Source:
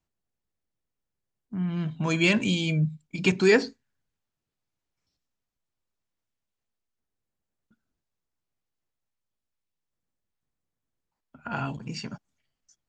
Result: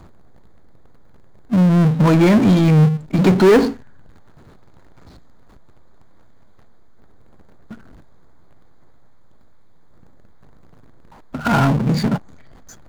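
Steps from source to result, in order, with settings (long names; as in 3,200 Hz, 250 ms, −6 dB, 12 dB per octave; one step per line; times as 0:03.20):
in parallel at −3 dB: downward compressor, threshold −28 dBFS, peak gain reduction 13 dB
on the sum: leveller curve on the samples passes 1
moving average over 16 samples
power curve on the samples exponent 0.5
level +3 dB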